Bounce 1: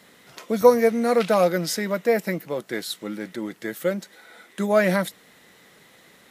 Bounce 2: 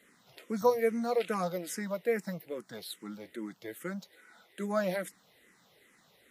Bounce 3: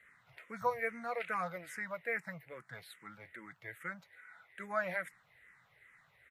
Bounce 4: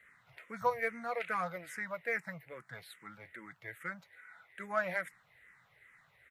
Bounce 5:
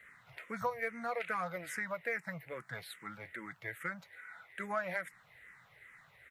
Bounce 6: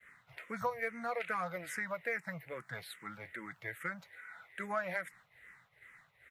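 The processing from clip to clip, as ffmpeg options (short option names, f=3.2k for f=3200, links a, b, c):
-filter_complex "[0:a]asplit=2[a][b];[b]afreqshift=-2.4[c];[a][c]amix=inputs=2:normalize=1,volume=-8dB"
-af "firequalizer=gain_entry='entry(130,0);entry(200,-18);entry(330,-19);entry(630,-9);entry(1400,0);entry(2100,2);entry(3100,-12);entry(5300,-19);entry(9100,-14);entry(14000,-18)':delay=0.05:min_phase=1,volume=2.5dB"
-af "aeval=exprs='0.0944*(cos(1*acos(clip(val(0)/0.0944,-1,1)))-cos(1*PI/2))+0.00168*(cos(7*acos(clip(val(0)/0.0944,-1,1)))-cos(7*PI/2))':c=same,volume=2dB"
-af "acompressor=threshold=-40dB:ratio=2.5,volume=4.5dB"
-af "agate=range=-33dB:threshold=-56dB:ratio=3:detection=peak"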